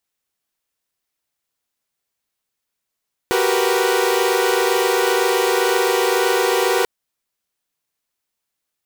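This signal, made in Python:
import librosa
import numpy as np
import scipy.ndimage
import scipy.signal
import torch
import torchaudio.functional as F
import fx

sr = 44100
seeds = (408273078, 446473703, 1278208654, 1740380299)

y = fx.chord(sr, length_s=3.54, notes=(66, 67, 70, 71), wave='saw', level_db=-18.5)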